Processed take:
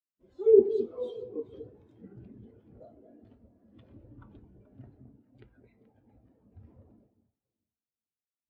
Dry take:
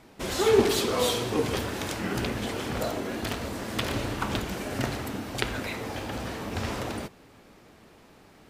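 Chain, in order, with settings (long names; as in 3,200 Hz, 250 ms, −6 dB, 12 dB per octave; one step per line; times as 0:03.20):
delay that swaps between a low-pass and a high-pass 215 ms, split 830 Hz, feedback 64%, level −4 dB
every bin expanded away from the loudest bin 2.5 to 1
level −2 dB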